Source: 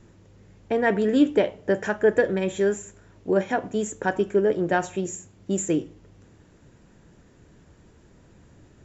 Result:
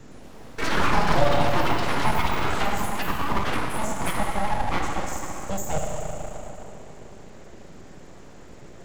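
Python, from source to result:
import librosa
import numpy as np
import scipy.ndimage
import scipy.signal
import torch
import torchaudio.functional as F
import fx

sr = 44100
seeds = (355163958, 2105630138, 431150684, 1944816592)

y = fx.rev_fdn(x, sr, rt60_s=2.9, lf_ratio=1.0, hf_ratio=0.7, size_ms=21.0, drr_db=-2.0)
y = fx.echo_pitch(y, sr, ms=115, semitones=6, count=3, db_per_echo=-3.0)
y = np.abs(y)
y = fx.band_squash(y, sr, depth_pct=40)
y = y * 10.0 ** (-4.0 / 20.0)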